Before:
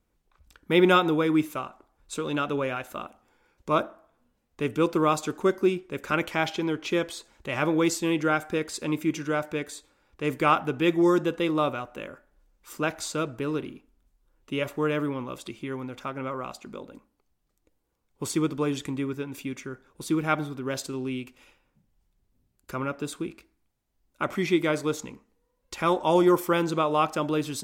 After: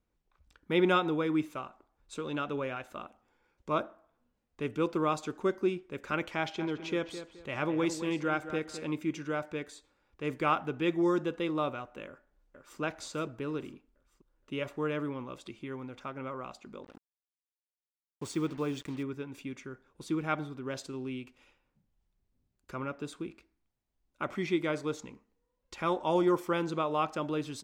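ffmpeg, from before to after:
-filter_complex "[0:a]asplit=3[a][b][c];[a]afade=t=out:st=6.58:d=0.02[d];[b]asplit=2[e][f];[f]adelay=212,lowpass=f=3.4k:p=1,volume=-11dB,asplit=2[g][h];[h]adelay=212,lowpass=f=3.4k:p=1,volume=0.3,asplit=2[i][j];[j]adelay=212,lowpass=f=3.4k:p=1,volume=0.3[k];[e][g][i][k]amix=inputs=4:normalize=0,afade=t=in:st=6.58:d=0.02,afade=t=out:st=8.88:d=0.02[l];[c]afade=t=in:st=8.88:d=0.02[m];[d][l][m]amix=inputs=3:normalize=0,asplit=2[n][o];[o]afade=t=in:st=12.07:d=0.01,afade=t=out:st=12.8:d=0.01,aecho=0:1:470|940|1410|1880|2350|2820:0.562341|0.253054|0.113874|0.0512434|0.0230595|0.0103768[p];[n][p]amix=inputs=2:normalize=0,asettb=1/sr,asplit=3[q][r][s];[q]atrim=end=16.844[t];[r]atrim=start=16.84:end=19.03,asetpts=PTS-STARTPTS,afade=t=in:d=0.004:c=qsin,afade=t=out:st=2.186:d=0.004:c=qsin,acrusher=bits=6:mix=0:aa=0.5[u];[s]atrim=start=19.026[v];[t][u]acrossfade=d=0.004:c1=hsin:c2=qsin[w];[w][v]acrossfade=d=0.004:c1=qsin:c2=hsin,equalizer=f=13k:t=o:w=0.97:g=-12,volume=-6.5dB"

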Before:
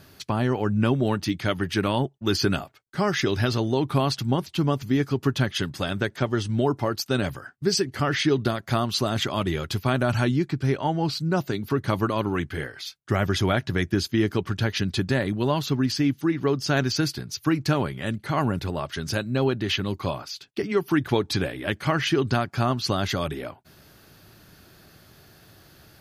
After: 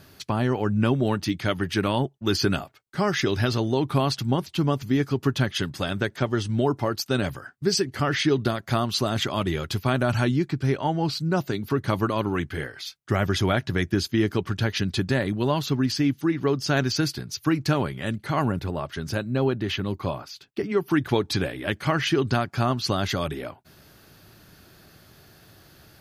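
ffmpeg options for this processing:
-filter_complex "[0:a]asettb=1/sr,asplit=3[a][b][c];[a]atrim=end=18.524[d];[b]atrim=start=18.52:end=20.9,asetpts=PTS-STARTPTS,afade=t=in:d=0.004:c=qsin,afade=t=out:st=2.376:d=0.004:c=qsin,equalizer=f=6k:t=o:w=2.9:g=-5.5[e];[c]atrim=start=20.896[f];[d][e]acrossfade=d=0.004:c1=hsin:c2=qsin[g];[g][f]acrossfade=d=0.004:c1=qsin:c2=hsin"

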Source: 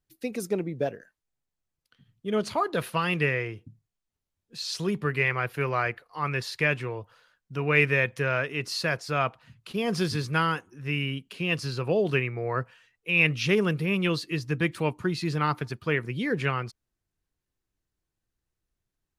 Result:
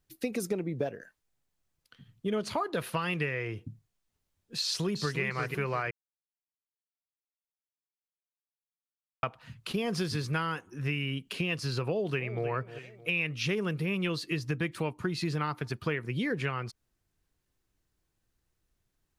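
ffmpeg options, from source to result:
-filter_complex "[0:a]asplit=2[a][b];[b]afade=t=in:st=4.6:d=0.01,afade=t=out:st=5.19:d=0.01,aecho=0:1:350|700|1050|1400:0.630957|0.189287|0.0567862|0.0170358[c];[a][c]amix=inputs=2:normalize=0,asplit=2[d][e];[e]afade=t=in:st=11.86:d=0.01,afade=t=out:st=12.47:d=0.01,aecho=0:1:310|620|930:0.149624|0.0448871|0.0134661[f];[d][f]amix=inputs=2:normalize=0,asplit=3[g][h][i];[g]atrim=end=5.91,asetpts=PTS-STARTPTS,afade=t=out:st=5.906:d=0.004:c=hsin[j];[h]atrim=start=5.91:end=9.23,asetpts=PTS-STARTPTS,volume=0[k];[i]atrim=start=9.23,asetpts=PTS-STARTPTS,afade=t=in:d=0.004:c=hsin[l];[j][k][l]concat=n=3:v=0:a=1,acompressor=threshold=-34dB:ratio=6,volume=5.5dB"

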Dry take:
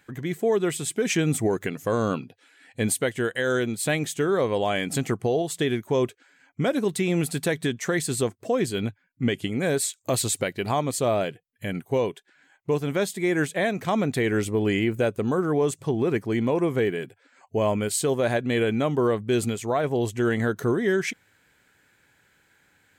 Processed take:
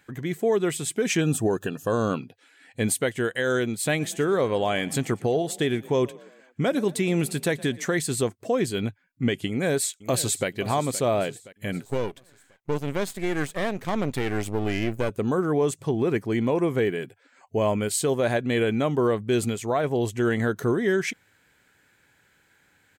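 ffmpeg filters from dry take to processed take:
-filter_complex "[0:a]asettb=1/sr,asplit=3[a][b][c];[a]atrim=end=1.214[d];[b]atrim=start=1.21:end=2.09,asetpts=PTS-STARTPTS,afade=t=in:d=0.004:c=qsin,afade=t=out:st=0.876:d=0.004:c=qsin,asuperstop=centerf=2100:order=20:qfactor=3.9[e];[c]atrim=start=2.086[f];[d][e]acrossfade=d=0.004:c1=hsin:c2=qsin[g];[g][f]acrossfade=d=0.004:c1=qsin:c2=hsin,asplit=3[h][i][j];[h]afade=t=out:st=3.99:d=0.02[k];[i]asplit=5[l][m][n][o][p];[m]adelay=118,afreqshift=31,volume=-21.5dB[q];[n]adelay=236,afreqshift=62,volume=-27.5dB[r];[o]adelay=354,afreqshift=93,volume=-33.5dB[s];[p]adelay=472,afreqshift=124,volume=-39.6dB[t];[l][q][r][s][t]amix=inputs=5:normalize=0,afade=t=in:st=3.99:d=0.02,afade=t=out:st=7.85:d=0.02[u];[j]afade=t=in:st=7.85:d=0.02[v];[k][u][v]amix=inputs=3:normalize=0,asplit=2[w][x];[x]afade=t=in:st=9.48:d=0.01,afade=t=out:st=10.48:d=0.01,aecho=0:1:520|1040|1560|2080|2600:0.16788|0.0923342|0.0507838|0.0279311|0.0153621[y];[w][y]amix=inputs=2:normalize=0,asettb=1/sr,asplit=3[z][aa][ab];[z]atrim=end=11.844[ac];[aa]atrim=start=11.84:end=15.1,asetpts=PTS-STARTPTS,afade=t=in:d=0.004:c=qsin,afade=t=out:st=3.256:d=0.004:c=qsin,aeval=exprs='if(lt(val(0),0),0.251*val(0),val(0))':c=same[ad];[ab]atrim=start=15.096[ae];[ac][ad]acrossfade=d=0.004:c1=hsin:c2=qsin[af];[af][ae]acrossfade=d=0.004:c1=qsin:c2=hsin"

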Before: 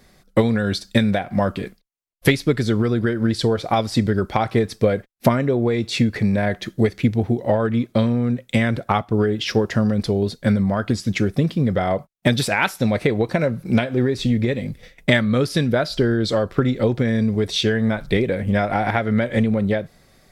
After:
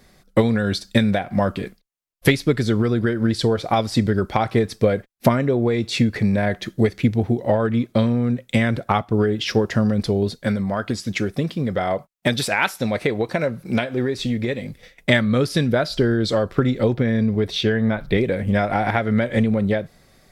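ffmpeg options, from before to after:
-filter_complex "[0:a]asettb=1/sr,asplit=3[a][b][c];[a]atrim=end=10.394[d];[b]atrim=start=10.39:end=15.1,asetpts=PTS-STARTPTS,afade=t=in:d=0.004:c=qsin,afade=t=out:st=4.706:d=0.004:c=qsin,lowshelf=f=270:g=-6.5[e];[c]atrim=start=15.096[f];[d][e]acrossfade=d=0.004:c1=hsin:c2=qsin[g];[g][f]acrossfade=d=0.004:c1=qsin:c2=hsin,asettb=1/sr,asplit=3[h][i][j];[h]atrim=end=16.944[k];[i]atrim=start=16.94:end=18.18,asetpts=PTS-STARTPTS,afade=t=in:d=0.004:c=qsin,afade=t=out:st=1.236:d=0.004:c=qsin,equalizer=f=7.9k:t=o:w=1.2:g=-10[l];[j]atrim=start=18.176[m];[k][l]acrossfade=d=0.004:c1=hsin:c2=qsin[n];[n][m]acrossfade=d=0.004:c1=qsin:c2=hsin"

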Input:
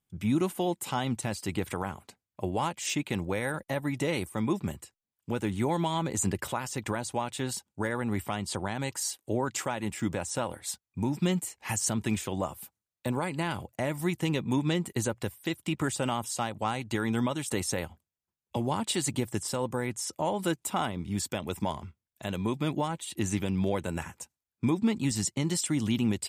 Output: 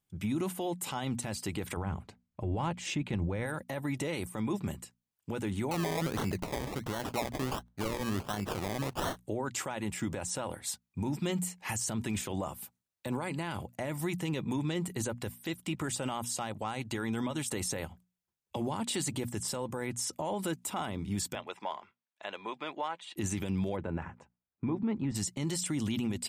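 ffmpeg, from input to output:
-filter_complex "[0:a]asettb=1/sr,asplit=3[a][b][c];[a]atrim=end=1.774[d];[b]atrim=start=1.77:end=3.46,asetpts=PTS-STARTPTS,afade=t=in:d=0.004:c=qsin,afade=t=out:st=1.686:d=0.004:c=qsin,aemphasis=mode=reproduction:type=bsi[e];[c]atrim=start=3.456[f];[d][e]acrossfade=d=0.004:c1=hsin:c2=qsin[g];[g][f]acrossfade=d=0.004:c1=qsin:c2=hsin,asettb=1/sr,asplit=3[h][i][j];[h]atrim=end=5.714[k];[i]atrim=start=5.71:end=9.17,asetpts=PTS-STARTPTS,afade=t=in:d=0.004:c=qsin,afade=t=out:st=3.456:d=0.004:c=qsin,acrusher=samples=25:mix=1:aa=0.000001:lfo=1:lforange=15:lforate=1.4[l];[j]atrim=start=9.166[m];[k][l]acrossfade=d=0.004:c1=hsin:c2=qsin[n];[n][m]acrossfade=d=0.004:c1=qsin:c2=hsin,asettb=1/sr,asplit=3[o][p][q];[o]atrim=end=21.354[r];[p]atrim=start=21.35:end=23.16,asetpts=PTS-STARTPTS,afade=t=in:d=0.004:c=qsin,afade=t=out:st=1.806:d=0.004:c=qsin,highpass=650,lowpass=3.3k[s];[q]atrim=start=23.156[t];[r][s]acrossfade=d=0.004:c1=hsin:c2=qsin[u];[u][t]acrossfade=d=0.004:c1=qsin:c2=hsin,asplit=3[v][w][x];[v]afade=t=out:st=23.75:d=0.02[y];[w]lowpass=1.6k,afade=t=in:st=23.75:d=0.02,afade=t=out:st=25.14:d=0.02[z];[x]afade=t=in:st=25.14:d=0.02[aa];[y][z][aa]amix=inputs=3:normalize=0,bandreject=f=60:t=h:w=6,bandreject=f=120:t=h:w=6,bandreject=f=180:t=h:w=6,bandreject=f=240:t=h:w=6,alimiter=level_in=0.5dB:limit=-24dB:level=0:latency=1:release=23,volume=-0.5dB"

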